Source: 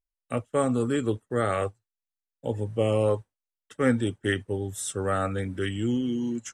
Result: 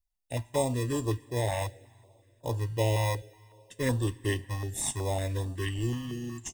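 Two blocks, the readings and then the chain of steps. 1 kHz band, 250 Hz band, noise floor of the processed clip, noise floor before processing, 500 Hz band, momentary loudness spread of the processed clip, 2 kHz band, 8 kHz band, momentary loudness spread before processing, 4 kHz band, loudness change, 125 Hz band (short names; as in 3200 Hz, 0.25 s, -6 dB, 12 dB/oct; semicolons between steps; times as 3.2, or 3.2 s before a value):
-4.0 dB, -7.5 dB, -66 dBFS, under -85 dBFS, -6.0 dB, 8 LU, -4.5 dB, +2.0 dB, 8 LU, 0.0 dB, -3.5 dB, +1.0 dB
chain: fixed phaser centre 510 Hz, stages 4; in parallel at -8 dB: sample-and-hold 30×; on the sum: comb 1.1 ms, depth 58%; two-slope reverb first 0.4 s, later 3.3 s, from -16 dB, DRR 14.5 dB; stepped notch 5.4 Hz 400–2100 Hz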